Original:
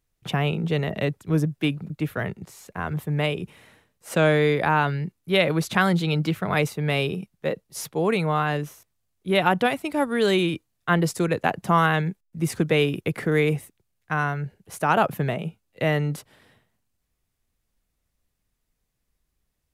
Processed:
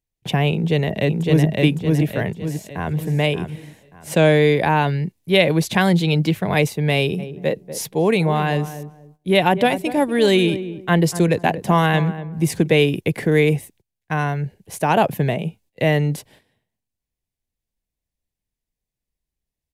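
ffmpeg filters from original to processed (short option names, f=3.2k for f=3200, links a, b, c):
-filter_complex "[0:a]asplit=2[a][b];[b]afade=t=in:st=0.53:d=0.01,afade=t=out:st=1.46:d=0.01,aecho=0:1:560|1120|1680|2240|2800:0.841395|0.336558|0.134623|0.0538493|0.0215397[c];[a][c]amix=inputs=2:normalize=0,asplit=2[d][e];[e]afade=t=in:st=2.29:d=0.01,afade=t=out:st=2.97:d=0.01,aecho=0:1:580|1160|1740:0.354813|0.106444|0.0319332[f];[d][f]amix=inputs=2:normalize=0,asplit=3[g][h][i];[g]afade=t=out:st=7.18:d=0.02[j];[h]asplit=2[k][l];[l]adelay=240,lowpass=f=880:p=1,volume=-11dB,asplit=2[m][n];[n]adelay=240,lowpass=f=880:p=1,volume=0.24,asplit=2[o][p];[p]adelay=240,lowpass=f=880:p=1,volume=0.24[q];[k][m][o][q]amix=inputs=4:normalize=0,afade=t=in:st=7.18:d=0.02,afade=t=out:st=12.66:d=0.02[r];[i]afade=t=in:st=12.66:d=0.02[s];[j][r][s]amix=inputs=3:normalize=0,equalizer=f=1.3k:w=3.7:g=-13.5,agate=range=-14dB:threshold=-54dB:ratio=16:detection=peak,volume=5.5dB"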